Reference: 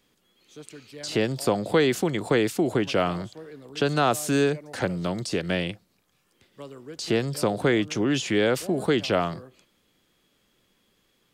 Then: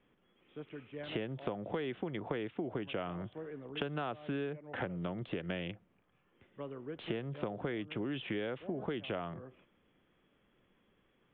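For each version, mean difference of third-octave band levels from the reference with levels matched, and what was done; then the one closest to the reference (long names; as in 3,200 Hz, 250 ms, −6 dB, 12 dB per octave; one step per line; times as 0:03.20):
7.5 dB: adaptive Wiener filter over 9 samples
Butterworth low-pass 3,500 Hz 96 dB per octave
downward compressor 6 to 1, threshold −33 dBFS, peak gain reduction 16.5 dB
level −2 dB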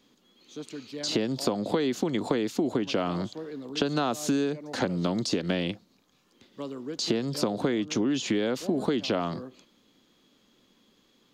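4.0 dB: octave-band graphic EQ 250/500/1,000/4,000/8,000 Hz +12/+3/+6/+9/−8 dB
downward compressor 12 to 1, threshold −19 dBFS, peak gain reduction 11.5 dB
parametric band 6,700 Hz +10.5 dB 0.48 octaves
level −3.5 dB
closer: second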